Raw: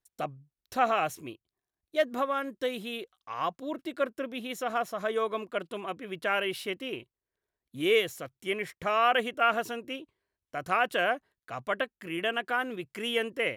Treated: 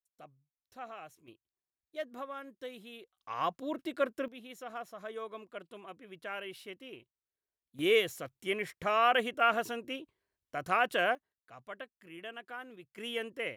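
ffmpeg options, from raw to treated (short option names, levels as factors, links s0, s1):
-af "asetnsamples=n=441:p=0,asendcmd='1.28 volume volume -12.5dB;3.17 volume volume -1.5dB;4.28 volume volume -12dB;7.79 volume volume -2dB;11.15 volume volume -14.5dB;12.98 volume volume -7.5dB',volume=0.106"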